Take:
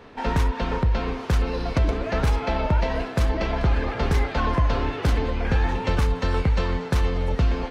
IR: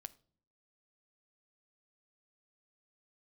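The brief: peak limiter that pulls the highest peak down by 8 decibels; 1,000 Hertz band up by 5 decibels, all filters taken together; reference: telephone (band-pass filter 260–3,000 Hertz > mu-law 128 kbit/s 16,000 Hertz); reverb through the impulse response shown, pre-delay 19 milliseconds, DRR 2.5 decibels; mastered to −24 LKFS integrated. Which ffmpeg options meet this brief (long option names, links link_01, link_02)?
-filter_complex "[0:a]equalizer=frequency=1000:width_type=o:gain=6,alimiter=limit=-17.5dB:level=0:latency=1,asplit=2[link_01][link_02];[1:a]atrim=start_sample=2205,adelay=19[link_03];[link_02][link_03]afir=irnorm=-1:irlink=0,volume=3dB[link_04];[link_01][link_04]amix=inputs=2:normalize=0,highpass=260,lowpass=3000,volume=4dB" -ar 16000 -c:a pcm_mulaw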